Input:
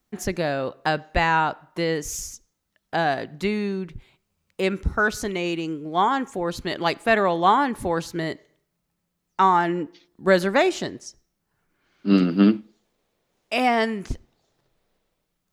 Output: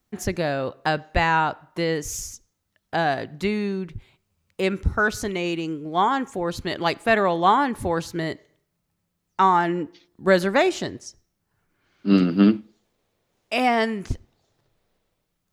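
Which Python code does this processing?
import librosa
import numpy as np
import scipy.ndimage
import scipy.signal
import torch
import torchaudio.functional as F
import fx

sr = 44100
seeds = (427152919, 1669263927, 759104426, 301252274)

y = fx.peak_eq(x, sr, hz=96.0, db=8.0, octaves=0.55)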